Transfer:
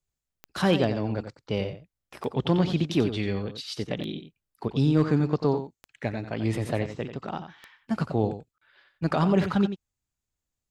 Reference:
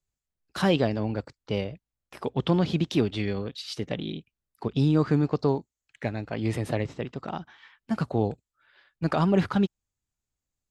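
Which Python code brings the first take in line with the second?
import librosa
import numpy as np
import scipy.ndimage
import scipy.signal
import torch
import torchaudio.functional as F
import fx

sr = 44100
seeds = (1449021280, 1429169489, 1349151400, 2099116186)

y = fx.fix_declip(x, sr, threshold_db=-11.5)
y = fx.fix_declick_ar(y, sr, threshold=10.0)
y = fx.fix_interpolate(y, sr, at_s=(8.58,), length_ms=35.0)
y = fx.fix_echo_inverse(y, sr, delay_ms=90, level_db=-10.0)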